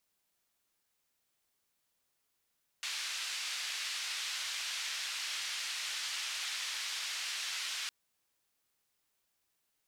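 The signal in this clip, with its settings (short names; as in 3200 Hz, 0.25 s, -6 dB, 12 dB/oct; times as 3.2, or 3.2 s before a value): noise band 1900–4800 Hz, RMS -38.5 dBFS 5.06 s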